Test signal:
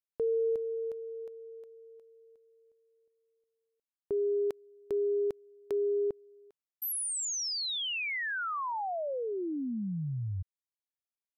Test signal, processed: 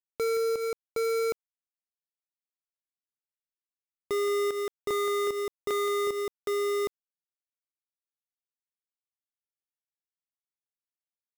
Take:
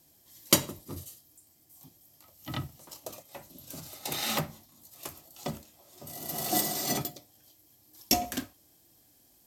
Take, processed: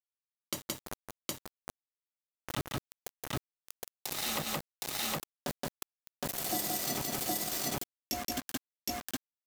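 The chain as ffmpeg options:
-af "aeval=exprs='val(0)*gte(abs(val(0)),0.0316)':c=same,aecho=1:1:172|765:0.501|0.668,acompressor=threshold=0.0355:ratio=12:attack=0.11:release=314:knee=1:detection=peak,volume=1.88"

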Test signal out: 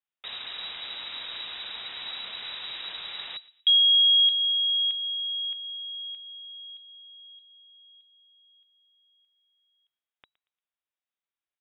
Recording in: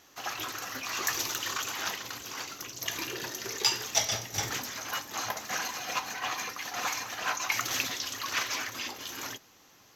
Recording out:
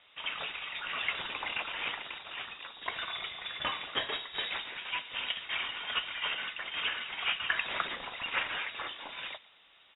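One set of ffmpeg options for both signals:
-filter_complex "[0:a]asplit=2[s0][s1];[s1]adelay=116,lowpass=f=2300:p=1,volume=0.112,asplit=2[s2][s3];[s3]adelay=116,lowpass=f=2300:p=1,volume=0.38,asplit=2[s4][s5];[s5]adelay=116,lowpass=f=2300:p=1,volume=0.38[s6];[s0][s2][s4][s6]amix=inputs=4:normalize=0,lowpass=f=3300:t=q:w=0.5098,lowpass=f=3300:t=q:w=0.6013,lowpass=f=3300:t=q:w=0.9,lowpass=f=3300:t=q:w=2.563,afreqshift=-3900"

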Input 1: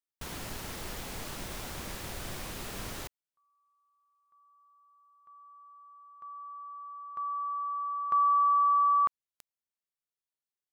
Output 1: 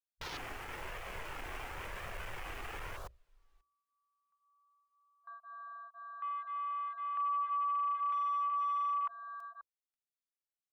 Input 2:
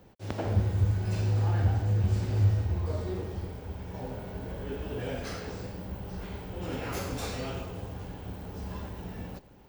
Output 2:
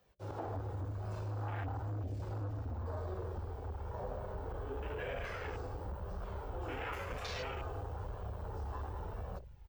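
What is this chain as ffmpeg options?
-filter_complex "[0:a]asplit=2[s0][s1];[s1]adelay=536.4,volume=0.0501,highshelf=f=4000:g=-12.1[s2];[s0][s2]amix=inputs=2:normalize=0,flanger=delay=1.6:depth=1.1:regen=-38:speed=0.97:shape=triangular,acompressor=threshold=0.00562:ratio=1.5:attack=12:release=217:detection=rms,asubboost=boost=3.5:cutoff=96,volume=42.2,asoftclip=hard,volume=0.0237,lowshelf=f=420:g=-11.5,bandreject=f=60:t=h:w=6,bandreject=f=120:t=h:w=6,bandreject=f=180:t=h:w=6,bandreject=f=240:t=h:w=6,bandreject=f=300:t=h:w=6,bandreject=f=360:t=h:w=6,bandreject=f=420:t=h:w=6,bandreject=f=480:t=h:w=6,bandreject=f=540:t=h:w=6,bandreject=f=600:t=h:w=6,acrossover=split=470|5200[s3][s4][s5];[s3]acompressor=threshold=0.00398:ratio=6:attack=7.7:release=375:knee=2.83:detection=peak[s6];[s6][s4][s5]amix=inputs=3:normalize=0,alimiter=level_in=7.08:limit=0.0631:level=0:latency=1:release=46,volume=0.141,afwtdn=0.00178,volume=3.55"

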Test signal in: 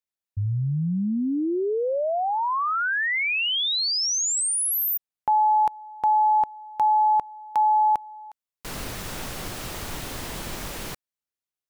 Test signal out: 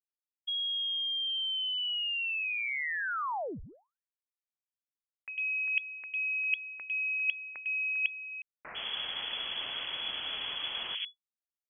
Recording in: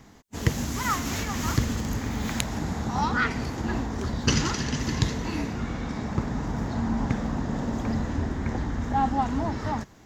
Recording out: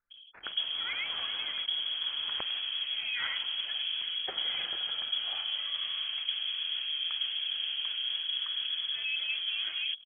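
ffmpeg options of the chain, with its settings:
-filter_complex "[0:a]equalizer=f=70:w=4.1:g=5,acrossover=split=1300[s0][s1];[s0]adelay=100[s2];[s2][s1]amix=inputs=2:normalize=0,areverse,acompressor=threshold=0.0141:ratio=4:attack=47:release=261:knee=6:detection=peak,areverse,lowpass=f=2900:t=q:w=0.5098,lowpass=f=2900:t=q:w=0.6013,lowpass=f=2900:t=q:w=0.9,lowpass=f=2900:t=q:w=2.563,afreqshift=-3400,anlmdn=0.00398,volume=1.26"

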